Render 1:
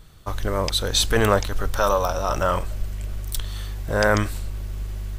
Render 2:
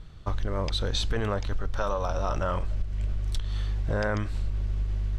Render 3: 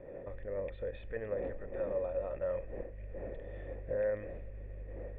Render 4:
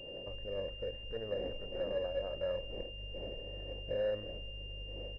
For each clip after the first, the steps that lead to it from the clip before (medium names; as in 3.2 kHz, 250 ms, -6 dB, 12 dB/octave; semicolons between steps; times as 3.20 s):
low-pass 4.9 kHz 12 dB/octave; bass shelf 240 Hz +6.5 dB; compression, threshold -21 dBFS, peak gain reduction 10.5 dB; trim -2.5 dB
wind noise 440 Hz -37 dBFS; peak limiter -19 dBFS, peak gain reduction 6.5 dB; cascade formant filter e; trim +3 dB
delay 228 ms -22 dB; class-D stage that switches slowly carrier 2.8 kHz; trim -1 dB